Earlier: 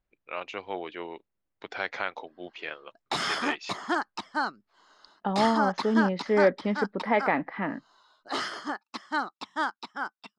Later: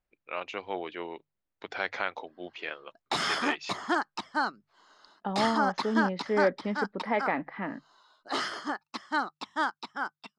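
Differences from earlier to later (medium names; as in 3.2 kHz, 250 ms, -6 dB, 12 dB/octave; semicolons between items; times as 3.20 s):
second voice -4.0 dB; master: add hum notches 50/100/150 Hz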